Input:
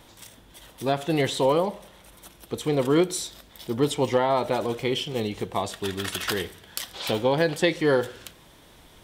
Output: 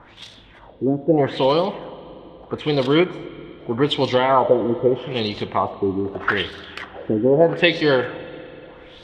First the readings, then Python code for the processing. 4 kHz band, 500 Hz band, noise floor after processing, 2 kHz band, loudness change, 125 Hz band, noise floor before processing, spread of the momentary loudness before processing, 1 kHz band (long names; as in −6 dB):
+4.5 dB, +5.5 dB, −46 dBFS, +6.5 dB, +5.5 dB, +4.0 dB, −53 dBFS, 12 LU, +6.0 dB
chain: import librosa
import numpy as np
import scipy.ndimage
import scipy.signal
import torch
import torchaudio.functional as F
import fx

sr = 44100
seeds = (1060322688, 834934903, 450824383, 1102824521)

y = fx.filter_lfo_lowpass(x, sr, shape='sine', hz=0.8, low_hz=310.0, high_hz=4200.0, q=3.1)
y = fx.rev_spring(y, sr, rt60_s=3.4, pass_ms=(48, 60), chirp_ms=65, drr_db=15.0)
y = y * 10.0 ** (3.5 / 20.0)